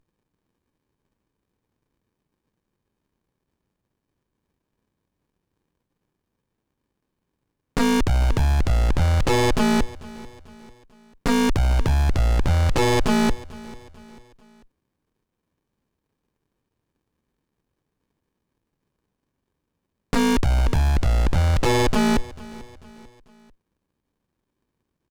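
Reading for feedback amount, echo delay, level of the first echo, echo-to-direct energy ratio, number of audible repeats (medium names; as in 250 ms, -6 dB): 44%, 443 ms, -20.0 dB, -19.0 dB, 3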